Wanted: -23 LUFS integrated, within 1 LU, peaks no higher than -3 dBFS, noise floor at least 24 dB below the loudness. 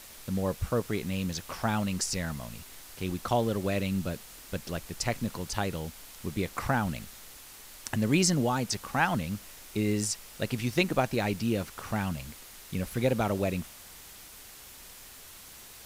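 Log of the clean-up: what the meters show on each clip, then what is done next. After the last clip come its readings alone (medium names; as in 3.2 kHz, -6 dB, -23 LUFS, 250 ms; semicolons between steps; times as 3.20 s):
noise floor -49 dBFS; noise floor target -55 dBFS; loudness -31.0 LUFS; peak level -10.0 dBFS; loudness target -23.0 LUFS
-> noise print and reduce 6 dB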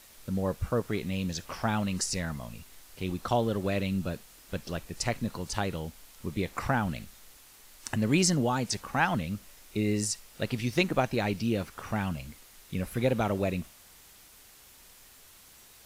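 noise floor -55 dBFS; loudness -31.0 LUFS; peak level -10.0 dBFS; loudness target -23.0 LUFS
-> trim +8 dB; peak limiter -3 dBFS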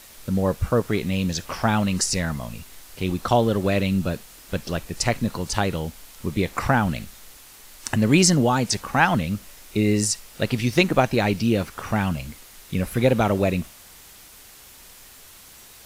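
loudness -23.0 LUFS; peak level -3.0 dBFS; noise floor -47 dBFS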